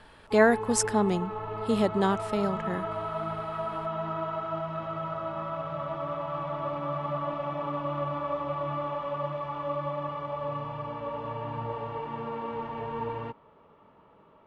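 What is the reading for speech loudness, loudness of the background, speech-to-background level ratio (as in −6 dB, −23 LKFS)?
−26.5 LKFS, −33.5 LKFS, 7.0 dB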